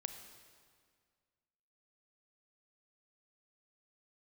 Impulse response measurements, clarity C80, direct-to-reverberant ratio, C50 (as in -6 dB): 9.0 dB, 7.0 dB, 8.0 dB